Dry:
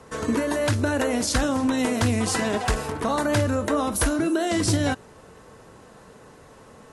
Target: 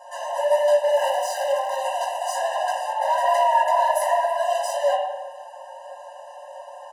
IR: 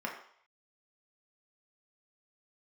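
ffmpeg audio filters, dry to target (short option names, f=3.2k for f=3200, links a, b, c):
-filter_complex "[0:a]bandreject=f=2k:w=5.1,aecho=1:1:5.5:0.88,asplit=2[a][b];[b]acompressor=threshold=-35dB:ratio=6,volume=-0.5dB[c];[a][c]amix=inputs=2:normalize=0,asettb=1/sr,asplit=3[d][e][f];[d]atrim=end=0.924[g];[e]atrim=start=0.92:end=1.77,asetpts=PTS-STARTPTS,afade=t=in:d=0.004:c=qsin,afade=t=out:st=0.846:d=0.004:c=qsin,acrusher=bits=4:dc=4:mix=0:aa=0.000001[h];[f]atrim=start=1.766[i];[g][h]acrossfade=d=0.004:c1=hsin:c2=qsin[j];[j][i]acrossfade=d=0.004:c1=qsin:c2=hsin,asettb=1/sr,asplit=3[k][l][m];[k]atrim=end=2.994[n];[l]atrim=start=2.99:end=4.19,asetpts=PTS-STARTPTS,afade=t=in:d=0.004:c=qsin,afade=t=out:st=1.196:d=0.004:c=qsin,afreqshift=400[o];[m]atrim=start=4.186[p];[n][o]acrossfade=d=0.004:c1=hsin:c2=qsin[q];[q][p]acrossfade=d=0.004:c1=qsin:c2=hsin,flanger=delay=15.5:depth=5.2:speed=1.5,asoftclip=type=hard:threshold=-24dB,aeval=exprs='0.119*(cos(1*acos(clip(val(0)/0.119,-1,1)))-cos(1*PI/2))+0.0596*(cos(2*acos(clip(val(0)/0.119,-1,1)))-cos(2*PI/2))+0.0106*(cos(8*acos(clip(val(0)/0.119,-1,1)))-cos(8*PI/2))':c=same[r];[1:a]atrim=start_sample=2205,asetrate=23814,aresample=44100[s];[r][s]afir=irnorm=-1:irlink=0,afftfilt=real='re*eq(mod(floor(b*sr/1024/520),2),1)':imag='im*eq(mod(floor(b*sr/1024/520),2),1)':win_size=1024:overlap=0.75"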